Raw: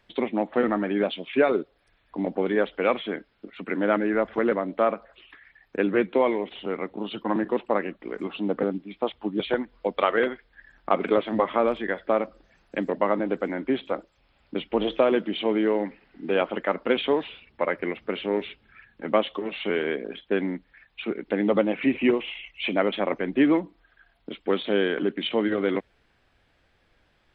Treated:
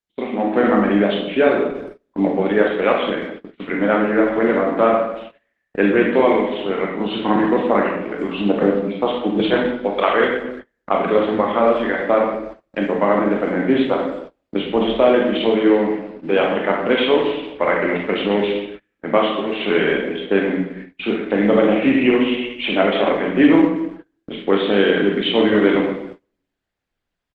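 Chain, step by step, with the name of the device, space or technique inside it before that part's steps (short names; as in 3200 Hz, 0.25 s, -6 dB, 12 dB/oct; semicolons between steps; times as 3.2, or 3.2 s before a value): speakerphone in a meeting room (reverb RT60 0.85 s, pre-delay 21 ms, DRR -1 dB; speakerphone echo 0.35 s, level -25 dB; AGC gain up to 11 dB; gate -31 dBFS, range -29 dB; gain -1 dB; Opus 16 kbps 48000 Hz)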